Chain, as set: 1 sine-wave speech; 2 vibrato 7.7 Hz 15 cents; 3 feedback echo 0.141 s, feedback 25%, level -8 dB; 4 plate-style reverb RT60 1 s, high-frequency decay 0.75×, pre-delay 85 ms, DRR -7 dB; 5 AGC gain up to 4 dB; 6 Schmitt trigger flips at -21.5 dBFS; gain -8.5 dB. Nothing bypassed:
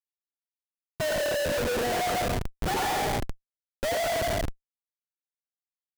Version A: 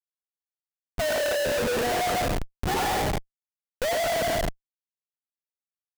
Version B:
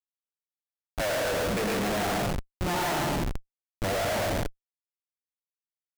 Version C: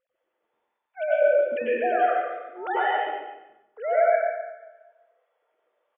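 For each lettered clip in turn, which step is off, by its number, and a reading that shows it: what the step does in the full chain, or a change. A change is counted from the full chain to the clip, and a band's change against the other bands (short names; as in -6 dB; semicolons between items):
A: 5, loudness change +2.0 LU; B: 1, 250 Hz band +4.5 dB; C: 6, crest factor change +8.0 dB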